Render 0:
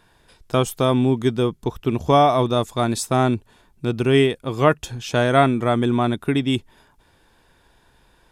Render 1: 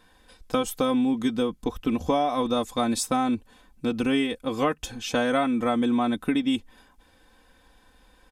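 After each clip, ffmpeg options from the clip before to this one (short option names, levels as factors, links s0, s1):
-af "aecho=1:1:3.9:0.81,acompressor=threshold=0.141:ratio=6,volume=0.708"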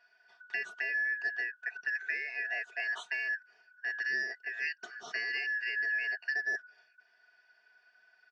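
-af "afftfilt=real='real(if(lt(b,272),68*(eq(floor(b/68),0)*2+eq(floor(b/68),1)*0+eq(floor(b/68),2)*3+eq(floor(b/68),3)*1)+mod(b,68),b),0)':imag='imag(if(lt(b,272),68*(eq(floor(b/68),0)*2+eq(floor(b/68),1)*0+eq(floor(b/68),2)*3+eq(floor(b/68),3)*1)+mod(b,68),b),0)':win_size=2048:overlap=0.75,highpass=430,equalizer=f=510:t=q:w=4:g=-8,equalizer=f=1200:t=q:w=4:g=6,equalizer=f=2200:t=q:w=4:g=-10,equalizer=f=4000:t=q:w=4:g=-8,lowpass=f=4600:w=0.5412,lowpass=f=4600:w=1.3066,volume=0.422"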